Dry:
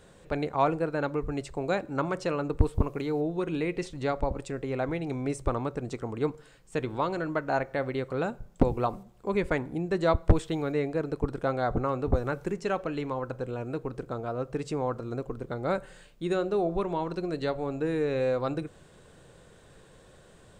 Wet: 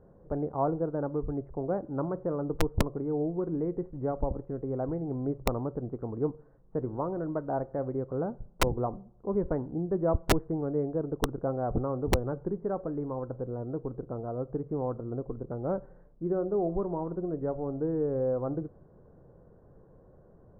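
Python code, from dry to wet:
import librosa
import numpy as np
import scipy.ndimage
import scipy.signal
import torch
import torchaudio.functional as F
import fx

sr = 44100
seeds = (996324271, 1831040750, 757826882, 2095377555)

y = scipy.ndimage.gaussian_filter1d(x, 8.9, mode='constant')
y = (np.mod(10.0 ** (14.5 / 20.0) * y + 1.0, 2.0) - 1.0) / 10.0 ** (14.5 / 20.0)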